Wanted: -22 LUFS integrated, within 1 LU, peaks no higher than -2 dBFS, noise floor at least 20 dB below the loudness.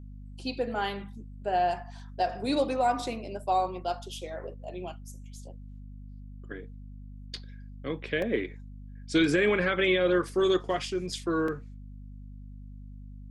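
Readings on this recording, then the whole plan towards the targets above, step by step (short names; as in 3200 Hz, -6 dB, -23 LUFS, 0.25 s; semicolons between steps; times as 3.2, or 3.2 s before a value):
dropouts 2; longest dropout 2.7 ms; hum 50 Hz; harmonics up to 250 Hz; hum level -41 dBFS; loudness -29.0 LUFS; peak -13.0 dBFS; loudness target -22.0 LUFS
-> interpolate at 8.22/11.48, 2.7 ms; de-hum 50 Hz, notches 5; gain +7 dB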